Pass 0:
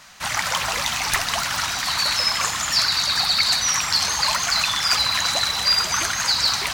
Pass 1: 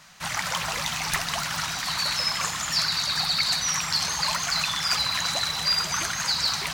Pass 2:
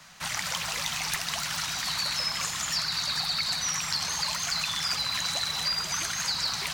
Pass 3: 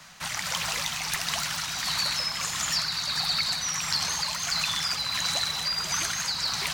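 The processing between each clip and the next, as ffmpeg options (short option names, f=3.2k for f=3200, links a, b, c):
-af "equalizer=f=160:t=o:w=0.29:g=12,volume=-5dB"
-filter_complex "[0:a]acrossover=split=100|550|2100[a][b][c][d];[a]acompressor=threshold=-52dB:ratio=4[e];[b]acompressor=threshold=-46dB:ratio=4[f];[c]acompressor=threshold=-38dB:ratio=4[g];[d]acompressor=threshold=-27dB:ratio=4[h];[e][f][g][h]amix=inputs=4:normalize=0"
-af "tremolo=f=1.5:d=0.29,volume=2.5dB"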